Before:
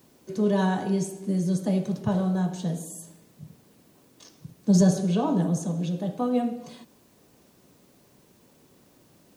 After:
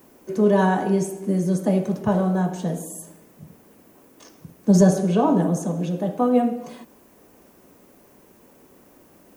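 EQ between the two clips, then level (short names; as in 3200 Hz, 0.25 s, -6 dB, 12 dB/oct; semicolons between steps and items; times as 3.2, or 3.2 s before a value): graphic EQ 125/4000/8000 Hz -11/-10/-4 dB; +8.0 dB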